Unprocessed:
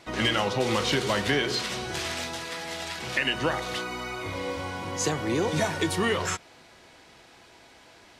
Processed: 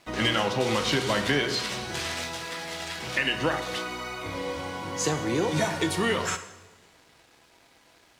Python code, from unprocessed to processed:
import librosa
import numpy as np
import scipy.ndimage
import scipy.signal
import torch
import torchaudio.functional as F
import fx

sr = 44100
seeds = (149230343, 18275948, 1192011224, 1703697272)

y = np.sign(x) * np.maximum(np.abs(x) - 10.0 ** (-55.5 / 20.0), 0.0)
y = fx.rev_double_slope(y, sr, seeds[0], early_s=0.86, late_s=2.3, knee_db=-18, drr_db=8.5)